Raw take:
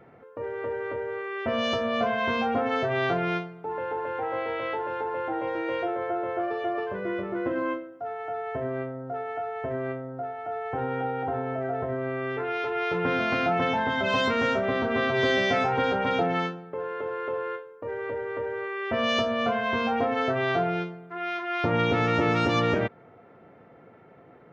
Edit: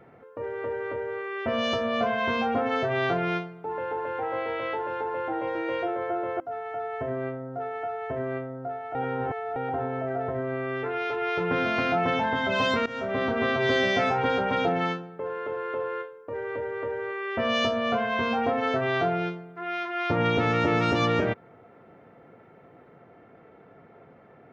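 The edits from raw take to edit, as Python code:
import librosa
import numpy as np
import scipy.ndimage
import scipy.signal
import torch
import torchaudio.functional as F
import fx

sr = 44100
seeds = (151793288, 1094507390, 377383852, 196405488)

y = fx.edit(x, sr, fx.cut(start_s=6.4, length_s=1.54),
    fx.reverse_span(start_s=10.49, length_s=0.61),
    fx.fade_in_from(start_s=14.4, length_s=0.35, floor_db=-19.0), tone=tone)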